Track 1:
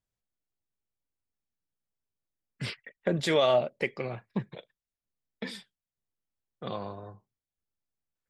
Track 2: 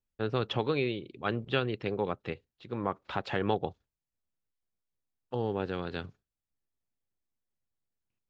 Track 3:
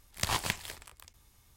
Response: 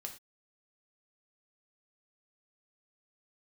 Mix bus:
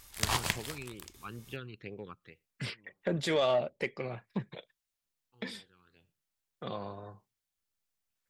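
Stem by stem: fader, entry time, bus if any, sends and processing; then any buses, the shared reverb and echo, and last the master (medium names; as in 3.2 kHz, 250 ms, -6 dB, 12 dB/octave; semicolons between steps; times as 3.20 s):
-3.0 dB, 0.00 s, no send, saturation -16 dBFS, distortion -21 dB
-11.5 dB, 0.00 s, send -24 dB, phase shifter stages 12, 2.2 Hz, lowest notch 580–1400 Hz; auto duck -23 dB, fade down 0.50 s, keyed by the first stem
-1.5 dB, 0.00 s, send -7.5 dB, none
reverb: on, pre-delay 3 ms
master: tape noise reduction on one side only encoder only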